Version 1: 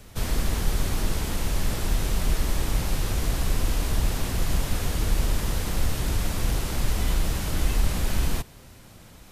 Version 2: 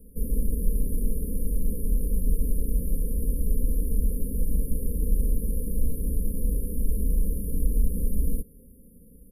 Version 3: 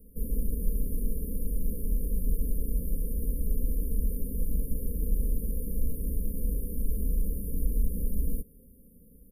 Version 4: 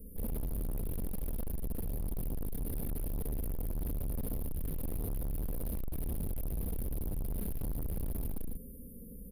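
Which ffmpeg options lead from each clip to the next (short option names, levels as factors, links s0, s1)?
-af "afftfilt=real='re*(1-between(b*sr/4096,600,9500))':imag='im*(1-between(b*sr/4096,600,9500))':win_size=4096:overlap=0.75,equalizer=f=810:w=1.3:g=-7.5,aecho=1:1:4.3:0.97,volume=0.631"
-af "aexciter=amount=1.3:drive=5.4:freq=6800,volume=0.631"
-filter_complex "[0:a]asoftclip=type=hard:threshold=0.0398,asplit=2[s0][s1];[s1]aecho=0:1:67.06|148.7:0.631|0.562[s2];[s0][s2]amix=inputs=2:normalize=0,asoftclip=type=tanh:threshold=0.0133,volume=1.78"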